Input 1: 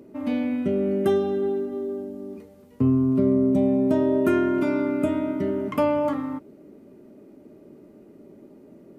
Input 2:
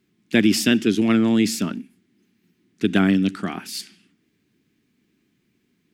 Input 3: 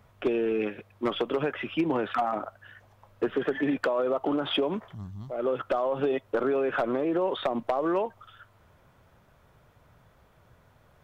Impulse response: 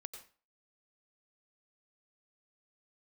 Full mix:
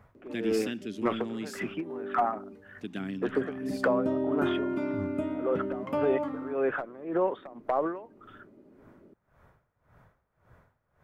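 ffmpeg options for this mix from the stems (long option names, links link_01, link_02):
-filter_complex "[0:a]highshelf=frequency=7000:gain=-11,adelay=150,volume=-8dB[link_01];[1:a]volume=-18.5dB,asplit=2[link_02][link_03];[2:a]highshelf=frequency=2400:width_type=q:width=1.5:gain=-7,aeval=exprs='val(0)*pow(10,-20*(0.5-0.5*cos(2*PI*1.8*n/s))/20)':channel_layout=same,volume=1dB[link_04];[link_03]apad=whole_len=402876[link_05];[link_01][link_05]sidechaincompress=threshold=-55dB:ratio=8:attack=16:release=169[link_06];[link_06][link_02][link_04]amix=inputs=3:normalize=0"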